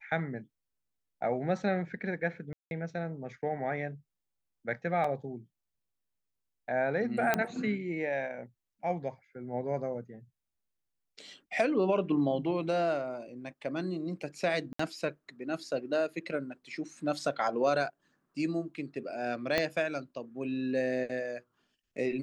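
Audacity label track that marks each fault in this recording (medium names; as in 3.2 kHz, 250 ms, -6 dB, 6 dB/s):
2.530000	2.710000	dropout 181 ms
5.040000	5.040000	dropout 4.3 ms
7.340000	7.340000	pop -12 dBFS
14.730000	14.790000	dropout 64 ms
19.580000	19.580000	pop -13 dBFS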